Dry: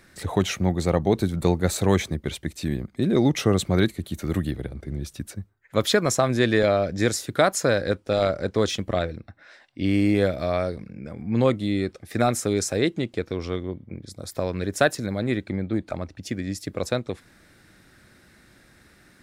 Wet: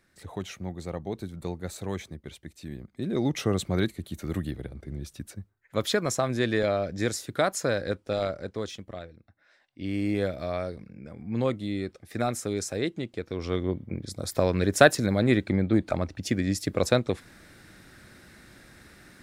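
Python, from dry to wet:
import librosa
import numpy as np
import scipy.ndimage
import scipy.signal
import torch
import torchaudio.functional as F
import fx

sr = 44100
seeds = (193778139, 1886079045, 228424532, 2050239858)

y = fx.gain(x, sr, db=fx.line((2.63, -13.0), (3.36, -5.5), (8.12, -5.5), (9.14, -17.0), (10.14, -6.5), (13.24, -6.5), (13.67, 3.0)))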